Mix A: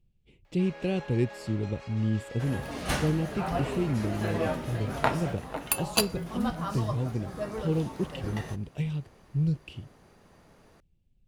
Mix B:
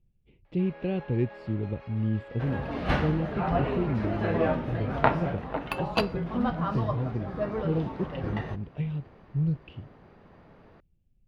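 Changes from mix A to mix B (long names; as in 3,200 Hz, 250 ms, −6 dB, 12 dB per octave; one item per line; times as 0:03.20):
second sound +5.0 dB
master: add high-frequency loss of the air 350 metres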